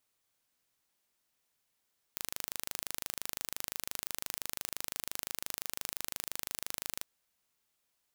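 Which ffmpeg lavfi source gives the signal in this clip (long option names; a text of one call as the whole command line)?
ffmpeg -f lavfi -i "aevalsrc='0.355*eq(mod(n,1709),0)':duration=4.86:sample_rate=44100" out.wav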